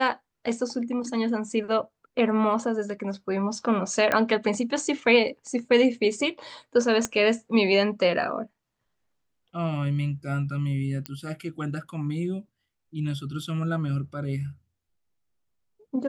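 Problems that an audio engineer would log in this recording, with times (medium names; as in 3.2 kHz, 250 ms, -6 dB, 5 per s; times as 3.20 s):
4.12 s: pop -10 dBFS
7.05 s: pop -12 dBFS
11.06 s: pop -16 dBFS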